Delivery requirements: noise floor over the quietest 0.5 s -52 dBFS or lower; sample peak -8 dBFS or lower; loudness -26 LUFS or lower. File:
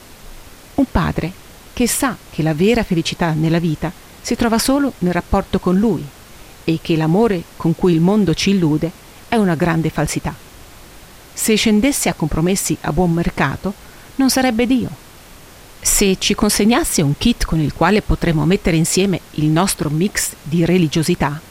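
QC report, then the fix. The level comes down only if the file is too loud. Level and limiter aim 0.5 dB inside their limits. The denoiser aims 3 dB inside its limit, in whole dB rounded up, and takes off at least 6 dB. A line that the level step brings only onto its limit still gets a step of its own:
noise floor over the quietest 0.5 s -40 dBFS: fail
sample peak -2.5 dBFS: fail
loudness -16.5 LUFS: fail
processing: noise reduction 6 dB, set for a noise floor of -40 dBFS; trim -10 dB

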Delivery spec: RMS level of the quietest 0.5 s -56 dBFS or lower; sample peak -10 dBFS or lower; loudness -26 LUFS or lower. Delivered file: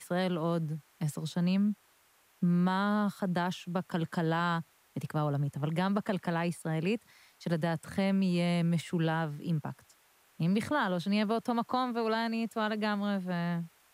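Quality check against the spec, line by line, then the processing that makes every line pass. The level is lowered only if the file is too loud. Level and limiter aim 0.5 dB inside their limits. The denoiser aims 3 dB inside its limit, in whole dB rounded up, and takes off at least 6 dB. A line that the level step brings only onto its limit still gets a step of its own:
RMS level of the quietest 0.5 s -66 dBFS: pass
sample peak -17.0 dBFS: pass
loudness -32.0 LUFS: pass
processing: none needed

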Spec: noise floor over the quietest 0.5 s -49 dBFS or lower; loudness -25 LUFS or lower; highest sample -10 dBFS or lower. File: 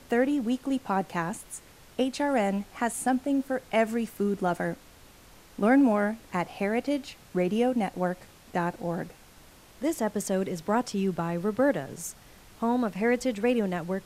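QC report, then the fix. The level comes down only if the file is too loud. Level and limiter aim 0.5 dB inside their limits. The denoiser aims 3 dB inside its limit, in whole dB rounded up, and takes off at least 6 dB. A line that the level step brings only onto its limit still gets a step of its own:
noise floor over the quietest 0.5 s -53 dBFS: pass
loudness -28.0 LUFS: pass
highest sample -12.0 dBFS: pass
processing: none needed

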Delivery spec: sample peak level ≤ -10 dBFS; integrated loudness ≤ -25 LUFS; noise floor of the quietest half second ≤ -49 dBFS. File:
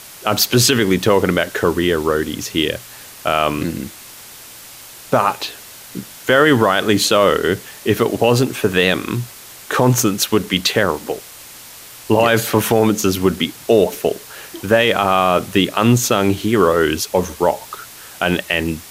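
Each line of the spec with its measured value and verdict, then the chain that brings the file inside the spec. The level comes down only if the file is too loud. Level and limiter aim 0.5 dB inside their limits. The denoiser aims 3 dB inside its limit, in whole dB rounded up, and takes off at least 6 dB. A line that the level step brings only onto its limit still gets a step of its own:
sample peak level -2.0 dBFS: fail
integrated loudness -16.5 LUFS: fail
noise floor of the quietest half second -38 dBFS: fail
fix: noise reduction 6 dB, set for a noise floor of -38 dBFS; trim -9 dB

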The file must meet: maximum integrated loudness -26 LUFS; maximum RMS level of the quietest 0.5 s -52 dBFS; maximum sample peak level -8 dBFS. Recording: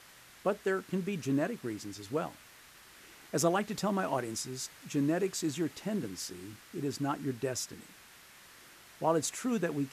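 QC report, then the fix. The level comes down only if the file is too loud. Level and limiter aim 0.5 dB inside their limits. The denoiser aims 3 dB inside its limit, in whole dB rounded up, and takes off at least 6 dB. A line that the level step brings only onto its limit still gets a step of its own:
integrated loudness -34.0 LUFS: pass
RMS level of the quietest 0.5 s -56 dBFS: pass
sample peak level -15.5 dBFS: pass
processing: none needed

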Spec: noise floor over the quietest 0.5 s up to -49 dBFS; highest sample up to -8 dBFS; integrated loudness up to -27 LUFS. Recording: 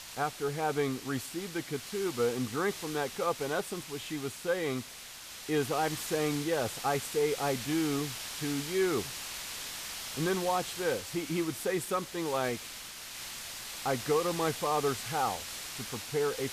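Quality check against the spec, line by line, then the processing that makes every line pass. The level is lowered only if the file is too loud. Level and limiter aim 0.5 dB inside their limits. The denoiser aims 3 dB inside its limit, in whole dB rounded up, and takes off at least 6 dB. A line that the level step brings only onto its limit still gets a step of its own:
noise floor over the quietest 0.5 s -47 dBFS: fail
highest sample -17.5 dBFS: pass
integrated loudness -33.0 LUFS: pass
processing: noise reduction 6 dB, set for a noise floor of -47 dBFS

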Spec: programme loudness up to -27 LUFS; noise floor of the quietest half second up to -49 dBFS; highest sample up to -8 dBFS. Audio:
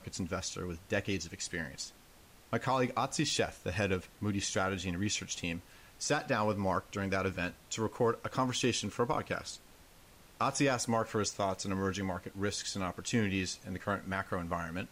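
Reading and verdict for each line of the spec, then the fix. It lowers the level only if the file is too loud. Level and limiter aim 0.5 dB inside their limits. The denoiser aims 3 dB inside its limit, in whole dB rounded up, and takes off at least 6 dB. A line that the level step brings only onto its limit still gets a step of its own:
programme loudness -34.5 LUFS: pass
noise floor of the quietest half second -59 dBFS: pass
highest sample -19.0 dBFS: pass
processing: none needed

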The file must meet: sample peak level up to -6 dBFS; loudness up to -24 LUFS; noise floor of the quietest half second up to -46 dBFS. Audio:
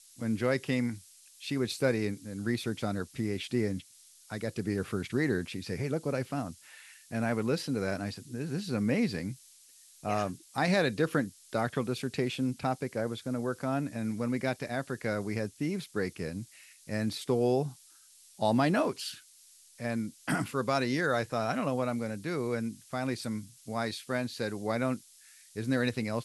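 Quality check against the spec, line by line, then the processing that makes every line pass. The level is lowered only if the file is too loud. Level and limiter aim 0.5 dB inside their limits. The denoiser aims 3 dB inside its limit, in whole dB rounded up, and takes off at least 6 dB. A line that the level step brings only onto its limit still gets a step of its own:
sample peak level -14.0 dBFS: pass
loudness -32.5 LUFS: pass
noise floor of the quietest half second -58 dBFS: pass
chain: none needed

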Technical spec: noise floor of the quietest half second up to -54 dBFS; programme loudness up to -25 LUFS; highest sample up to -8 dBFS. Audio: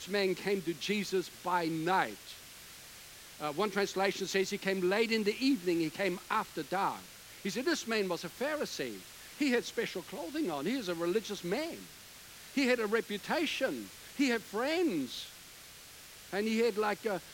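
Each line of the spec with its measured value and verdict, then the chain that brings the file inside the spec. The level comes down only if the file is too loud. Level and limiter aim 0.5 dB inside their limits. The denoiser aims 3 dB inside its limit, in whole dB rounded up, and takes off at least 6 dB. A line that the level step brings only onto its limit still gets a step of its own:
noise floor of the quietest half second -52 dBFS: fail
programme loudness -33.5 LUFS: pass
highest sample -14.5 dBFS: pass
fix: noise reduction 6 dB, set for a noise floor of -52 dBFS

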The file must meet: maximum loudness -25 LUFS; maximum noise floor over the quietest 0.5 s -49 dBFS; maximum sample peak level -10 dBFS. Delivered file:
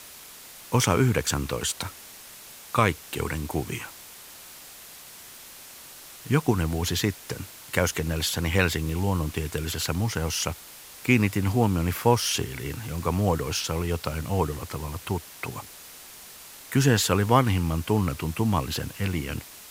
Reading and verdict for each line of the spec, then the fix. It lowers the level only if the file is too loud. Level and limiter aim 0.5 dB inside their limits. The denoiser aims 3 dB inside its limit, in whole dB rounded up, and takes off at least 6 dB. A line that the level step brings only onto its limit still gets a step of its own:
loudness -26.0 LUFS: pass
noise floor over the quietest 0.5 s -45 dBFS: fail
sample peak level -5.0 dBFS: fail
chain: noise reduction 7 dB, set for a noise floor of -45 dBFS; peak limiter -10.5 dBFS

